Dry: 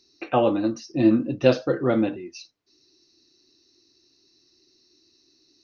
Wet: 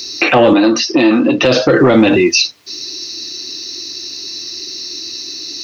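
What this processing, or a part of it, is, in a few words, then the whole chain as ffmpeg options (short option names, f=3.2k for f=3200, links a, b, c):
mastering chain: -filter_complex "[0:a]highpass=44,equalizer=f=1.5k:t=o:w=0.27:g=-3,acrossover=split=690|5100[a][b][c];[a]acompressor=threshold=-19dB:ratio=4[d];[b]acompressor=threshold=-33dB:ratio=4[e];[c]acompressor=threshold=-58dB:ratio=4[f];[d][e][f]amix=inputs=3:normalize=0,acompressor=threshold=-26dB:ratio=2.5,asoftclip=type=tanh:threshold=-20dB,tiltshelf=f=1.1k:g=-6,alimiter=level_in=32.5dB:limit=-1dB:release=50:level=0:latency=1,asettb=1/sr,asplit=3[g][h][i];[g]atrim=end=0.534[j];[h]atrim=start=0.53:end=1.45,asetpts=PTS-STARTPTS,afade=t=in:d=0.004:c=qsin,afade=t=out:st=0.916:d=0.004:c=qsin,acrossover=split=220 5100:gain=0.0891 1 0.158[k][l][m];[k][l][m]amix=inputs=3:normalize=0[n];[i]atrim=start=1.446[o];[j][n]acrossfade=d=0.004:c1=hsin:c2=qsin[p];[p][o]acrossfade=d=0.004:c1=qsin:c2=hsin,volume=-1dB"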